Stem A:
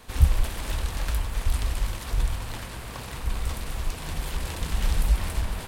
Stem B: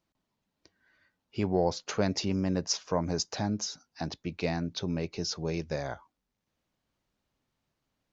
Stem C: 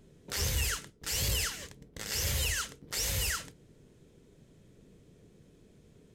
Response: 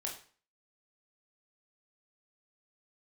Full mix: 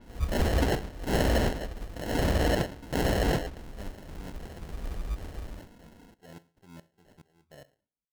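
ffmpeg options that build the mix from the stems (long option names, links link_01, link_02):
-filter_complex "[0:a]highshelf=frequency=6100:gain=8,volume=-12dB[link_01];[1:a]highshelf=frequency=6200:gain=-9,aeval=exprs='val(0)*pow(10,-33*if(lt(mod(-2.4*n/s,1),2*abs(-2.4)/1000),1-mod(-2.4*n/s,1)/(2*abs(-2.4)/1000),(mod(-2.4*n/s,1)-2*abs(-2.4)/1000)/(1-2*abs(-2.4)/1000))/20)':channel_layout=same,adelay=1800,volume=-13.5dB,asplit=2[link_02][link_03];[link_03]volume=-12dB[link_04];[2:a]aecho=1:1:3.8:0.82,volume=3dB,asplit=2[link_05][link_06];[link_06]volume=-12.5dB[link_07];[3:a]atrim=start_sample=2205[link_08];[link_04][link_07]amix=inputs=2:normalize=0[link_09];[link_09][link_08]afir=irnorm=-1:irlink=0[link_10];[link_01][link_02][link_05][link_10]amix=inputs=4:normalize=0,acrusher=samples=37:mix=1:aa=0.000001,adynamicequalizer=threshold=0.00316:dfrequency=6400:dqfactor=0.7:tfrequency=6400:tqfactor=0.7:attack=5:release=100:ratio=0.375:range=3:mode=cutabove:tftype=highshelf"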